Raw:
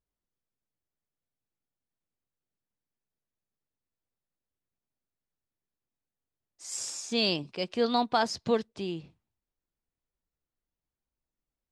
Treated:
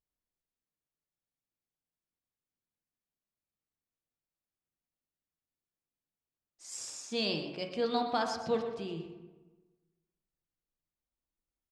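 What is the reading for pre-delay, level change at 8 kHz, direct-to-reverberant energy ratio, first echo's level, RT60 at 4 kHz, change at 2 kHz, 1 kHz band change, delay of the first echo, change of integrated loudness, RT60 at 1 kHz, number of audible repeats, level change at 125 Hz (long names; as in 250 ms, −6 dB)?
5 ms, −6.0 dB, 3.0 dB, −12.0 dB, 0.80 s, −5.0 dB, −4.5 dB, 122 ms, −5.0 dB, 1.2 s, 1, −4.0 dB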